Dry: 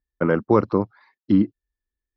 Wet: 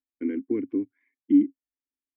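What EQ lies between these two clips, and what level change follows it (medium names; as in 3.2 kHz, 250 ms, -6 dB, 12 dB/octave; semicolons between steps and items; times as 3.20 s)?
vowel filter i; treble shelf 2.1 kHz -10.5 dB; static phaser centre 850 Hz, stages 8; +6.0 dB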